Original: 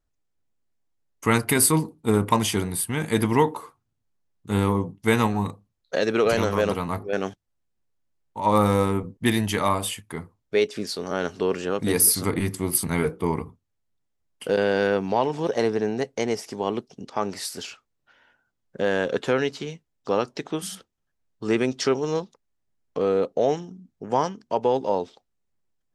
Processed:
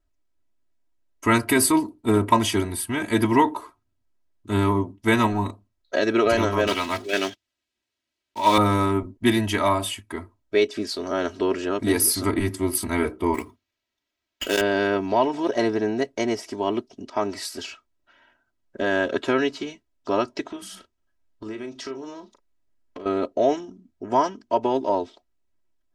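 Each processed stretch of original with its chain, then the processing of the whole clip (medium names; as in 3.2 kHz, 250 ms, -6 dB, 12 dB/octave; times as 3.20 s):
6.67–8.58 s: block-companded coder 5-bit + frequency weighting D
13.34–14.61 s: frequency weighting D + sample-rate reducer 9.9 kHz
20.50–23.06 s: compression 4:1, threshold -35 dBFS + doubling 37 ms -10.5 dB
whole clip: treble shelf 6.9 kHz -7.5 dB; comb 3.1 ms, depth 87%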